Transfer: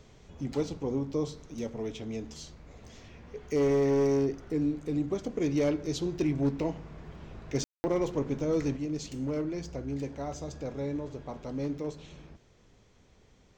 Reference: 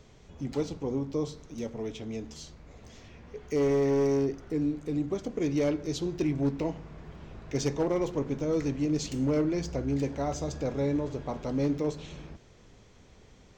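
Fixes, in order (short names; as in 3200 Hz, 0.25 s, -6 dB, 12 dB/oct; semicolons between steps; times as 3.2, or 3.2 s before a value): room tone fill 7.64–7.84; gain 0 dB, from 8.77 s +5.5 dB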